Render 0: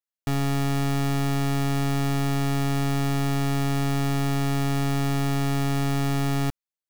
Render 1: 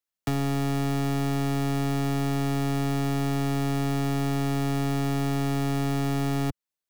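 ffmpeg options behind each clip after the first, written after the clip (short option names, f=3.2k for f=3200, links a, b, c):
-filter_complex "[0:a]acrossover=split=100|240|690[a][b][c][d];[a]acompressor=threshold=-39dB:ratio=4[e];[b]acompressor=threshold=-33dB:ratio=4[f];[c]acompressor=threshold=-32dB:ratio=4[g];[d]acompressor=threshold=-37dB:ratio=4[h];[e][f][g][h]amix=inputs=4:normalize=0,volume=3dB"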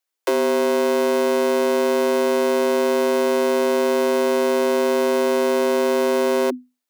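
-af "afreqshift=250,volume=7dB"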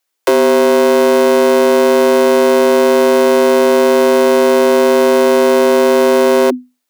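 -af "acontrast=87,volume=2.5dB"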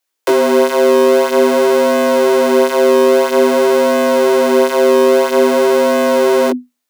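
-af "flanger=delay=16.5:depth=6.6:speed=0.5,volume=1.5dB"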